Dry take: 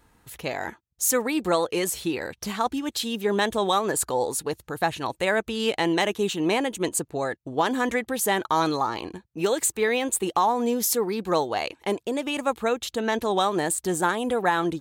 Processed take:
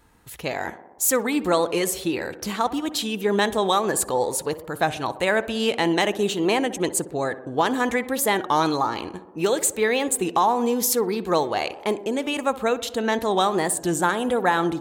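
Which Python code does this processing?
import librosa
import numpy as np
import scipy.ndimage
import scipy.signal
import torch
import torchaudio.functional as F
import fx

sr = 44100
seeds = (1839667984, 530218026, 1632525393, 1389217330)

p1 = x + fx.echo_tape(x, sr, ms=63, feedback_pct=83, wet_db=-13.0, lp_hz=1500.0, drive_db=15.0, wow_cents=33, dry=0)
p2 = fx.record_warp(p1, sr, rpm=33.33, depth_cents=100.0)
y = p2 * librosa.db_to_amplitude(2.0)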